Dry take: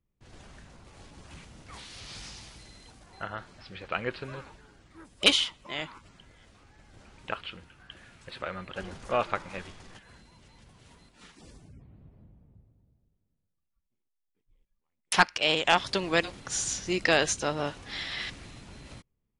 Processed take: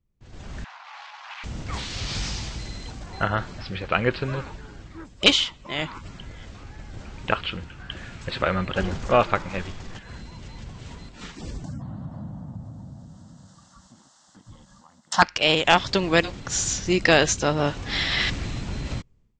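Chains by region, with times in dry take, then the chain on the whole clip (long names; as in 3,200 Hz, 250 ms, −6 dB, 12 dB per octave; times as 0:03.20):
0:00.64–0:01.44: mu-law and A-law mismatch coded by mu + Butterworth high-pass 780 Hz 48 dB per octave + high-frequency loss of the air 230 metres
0:11.64–0:15.22: high-pass filter 210 Hz + upward compression, threshold −35 dBFS + phaser with its sweep stopped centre 990 Hz, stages 4
whole clip: Butterworth low-pass 8,000 Hz 72 dB per octave; low-shelf EQ 220 Hz +7.5 dB; automatic gain control gain up to 13 dB; level −1 dB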